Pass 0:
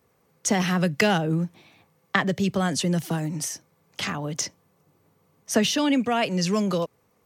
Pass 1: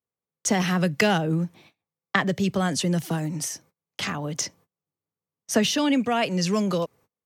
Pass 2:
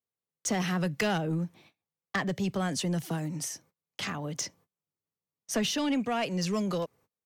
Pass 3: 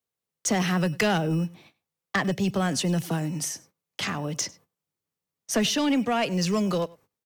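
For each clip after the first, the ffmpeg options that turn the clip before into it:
-af "agate=range=-29dB:threshold=-51dB:ratio=16:detection=peak"
-af "asoftclip=type=tanh:threshold=-16dB,volume=-5dB"
-filter_complex "[0:a]acrossover=split=170[a][b];[a]acrusher=samples=16:mix=1:aa=0.000001[c];[c][b]amix=inputs=2:normalize=0,aecho=1:1:99:0.0708,volume=5dB"

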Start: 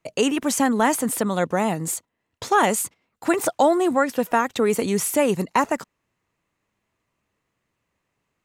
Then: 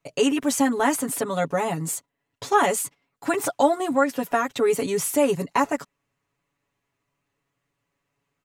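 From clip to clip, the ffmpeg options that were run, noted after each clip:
-af "aecho=1:1:7.1:0.93,volume=-4.5dB"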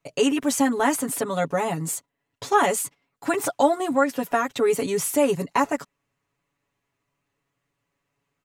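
-af anull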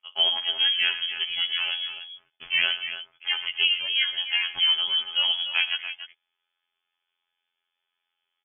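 -af "afftfilt=real='hypot(re,im)*cos(PI*b)':imag='0':win_size=2048:overlap=0.75,aecho=1:1:54|116|288:0.119|0.178|0.299,lowpass=f=3k:t=q:w=0.5098,lowpass=f=3k:t=q:w=0.6013,lowpass=f=3k:t=q:w=0.9,lowpass=f=3k:t=q:w=2.563,afreqshift=-3500"

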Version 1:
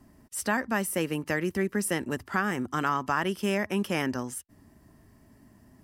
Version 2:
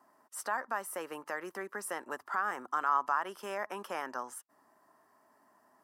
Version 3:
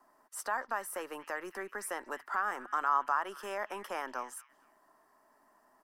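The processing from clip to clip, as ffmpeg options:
-af "alimiter=limit=-19.5dB:level=0:latency=1:release=183,highpass=850,highshelf=f=1.7k:t=q:w=1.5:g=-11,volume=3dB"
-filter_complex "[0:a]acrossover=split=240|1800|3700[a][b][c][d];[a]aeval=exprs='max(val(0),0)':c=same[e];[c]aecho=1:1:234|468|702:0.447|0.112|0.0279[f];[e][b][f][d]amix=inputs=4:normalize=0"

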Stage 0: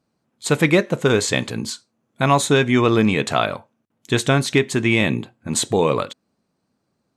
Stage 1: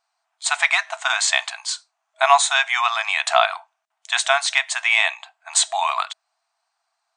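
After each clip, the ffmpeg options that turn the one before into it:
-af "afftfilt=real='re*between(b*sr/4096,640,9600)':imag='im*between(b*sr/4096,640,9600)':win_size=4096:overlap=0.75,volume=4dB"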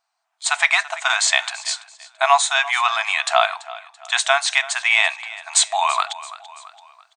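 -af "aecho=1:1:335|670|1005:0.126|0.0453|0.0163,dynaudnorm=f=120:g=7:m=10dB,volume=-1dB"

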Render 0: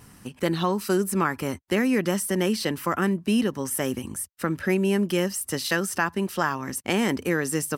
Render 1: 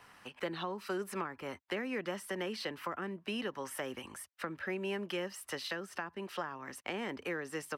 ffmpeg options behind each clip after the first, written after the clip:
-filter_complex "[0:a]acrossover=split=530 4000:gain=0.1 1 0.141[a][b][c];[a][b][c]amix=inputs=3:normalize=0,acrossover=split=400[d][e];[e]acompressor=threshold=-38dB:ratio=10[f];[d][f]amix=inputs=2:normalize=0"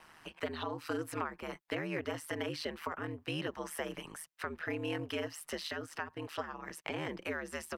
-af "aeval=exprs='val(0)*sin(2*PI*78*n/s)':c=same,volume=3dB"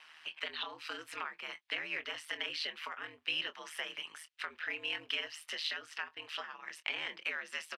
-filter_complex "[0:a]bandpass=f=3k:t=q:w=1.6:csg=0,asplit=2[a][b];[b]adelay=24,volume=-12dB[c];[a][c]amix=inputs=2:normalize=0,volume=8dB"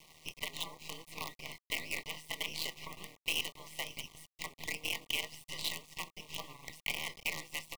-af "acrusher=bits=6:dc=4:mix=0:aa=0.000001,asuperstop=centerf=1500:order=20:qfactor=2.1,volume=1dB"

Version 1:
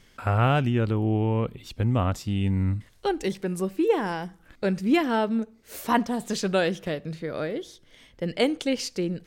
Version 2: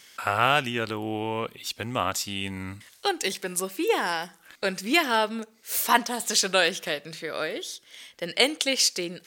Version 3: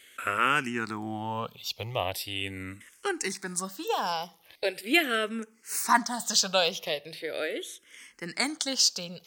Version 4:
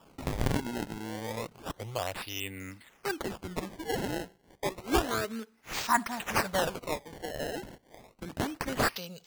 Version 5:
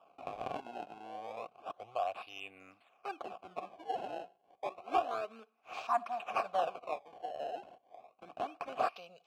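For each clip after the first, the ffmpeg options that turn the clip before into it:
-af "highpass=f=1.2k:p=1,highshelf=f=3.7k:g=7.5,volume=6.5dB"
-filter_complex "[0:a]asplit=2[a][b];[b]afreqshift=-0.4[c];[a][c]amix=inputs=2:normalize=1"
-af "acrusher=samples=21:mix=1:aa=0.000001:lfo=1:lforange=33.6:lforate=0.3,volume=-3.5dB"
-filter_complex "[0:a]asplit=3[a][b][c];[a]bandpass=f=730:t=q:w=8,volume=0dB[d];[b]bandpass=f=1.09k:t=q:w=8,volume=-6dB[e];[c]bandpass=f=2.44k:t=q:w=8,volume=-9dB[f];[d][e][f]amix=inputs=3:normalize=0,volume=5dB"

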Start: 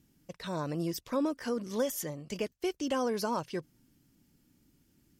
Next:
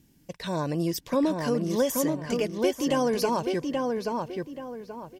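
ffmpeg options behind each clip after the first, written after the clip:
-filter_complex "[0:a]bandreject=f=1.3k:w=5.7,asplit=2[a][b];[b]adelay=830,lowpass=f=2.6k:p=1,volume=-3dB,asplit=2[c][d];[d]adelay=830,lowpass=f=2.6k:p=1,volume=0.33,asplit=2[e][f];[f]adelay=830,lowpass=f=2.6k:p=1,volume=0.33,asplit=2[g][h];[h]adelay=830,lowpass=f=2.6k:p=1,volume=0.33[i];[a][c][e][g][i]amix=inputs=5:normalize=0,volume=6dB"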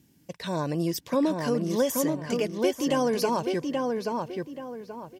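-af "highpass=76"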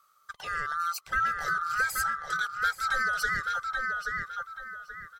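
-af "afftfilt=real='real(if(lt(b,960),b+48*(1-2*mod(floor(b/48),2)),b),0)':imag='imag(if(lt(b,960),b+48*(1-2*mod(floor(b/48),2)),b),0)':win_size=2048:overlap=0.75,volume=-3.5dB"

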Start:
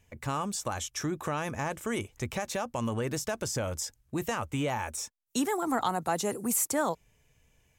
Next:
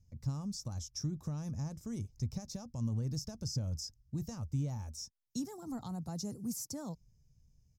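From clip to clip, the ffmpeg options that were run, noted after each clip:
-af "firequalizer=gain_entry='entry(150,0);entry(360,-18);entry(1700,-29);entry(3000,-28);entry(5100,-3);entry(8200,-20);entry(14000,-16)':delay=0.05:min_phase=1,volume=1.5dB"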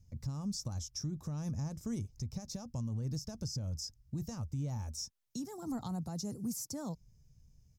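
-af "alimiter=level_in=10dB:limit=-24dB:level=0:latency=1:release=262,volume=-10dB,volume=4dB"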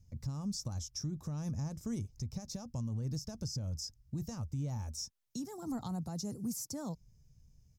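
-af anull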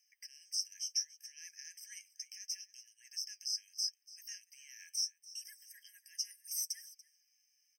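-af "aecho=1:1:288:0.112,flanger=delay=2.3:depth=9.2:regen=64:speed=0.72:shape=triangular,afftfilt=real='re*eq(mod(floor(b*sr/1024/1600),2),1)':imag='im*eq(mod(floor(b*sr/1024/1600),2),1)':win_size=1024:overlap=0.75,volume=12dB"

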